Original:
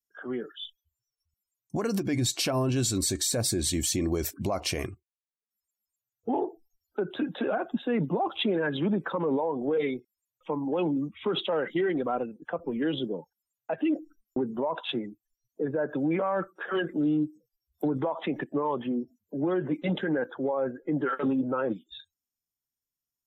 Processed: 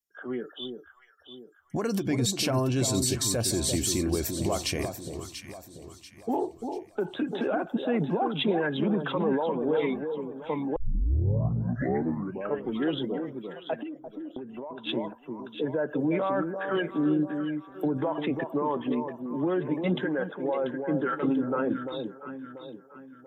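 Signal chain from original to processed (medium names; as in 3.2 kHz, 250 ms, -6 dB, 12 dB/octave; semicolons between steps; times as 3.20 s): echo whose repeats swap between lows and highs 344 ms, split 1 kHz, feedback 62%, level -6 dB; 10.76 s: tape start 2.07 s; 13.75–14.87 s: compression 12:1, threshold -35 dBFS, peak gain reduction 13.5 dB; 20.06–20.64 s: bass shelf 160 Hz -11 dB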